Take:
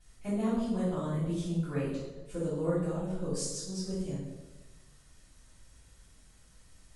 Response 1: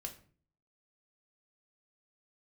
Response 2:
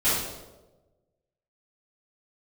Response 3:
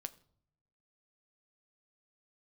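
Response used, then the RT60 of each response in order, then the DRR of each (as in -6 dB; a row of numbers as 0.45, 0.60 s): 2; 0.45 s, 1.1 s, not exponential; 3.0, -14.0, 10.0 dB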